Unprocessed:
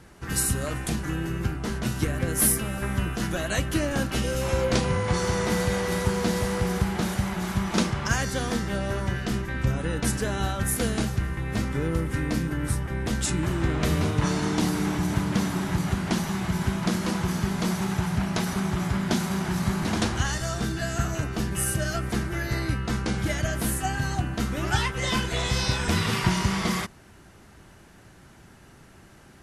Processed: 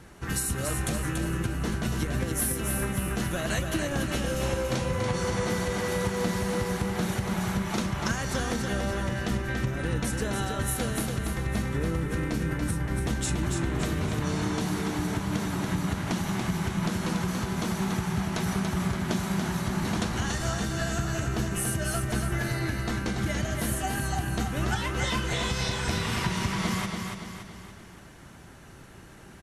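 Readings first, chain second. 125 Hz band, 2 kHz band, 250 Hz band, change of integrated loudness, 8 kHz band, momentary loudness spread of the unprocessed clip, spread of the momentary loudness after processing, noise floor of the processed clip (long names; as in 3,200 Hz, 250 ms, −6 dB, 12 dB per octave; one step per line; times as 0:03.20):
−2.5 dB, −2.0 dB, −2.5 dB, −2.5 dB, −3.0 dB, 4 LU, 2 LU, −48 dBFS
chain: notch filter 4,900 Hz, Q 15
downward compressor, threshold −27 dBFS, peak gain reduction 10 dB
repeating echo 285 ms, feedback 48%, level −5 dB
level +1 dB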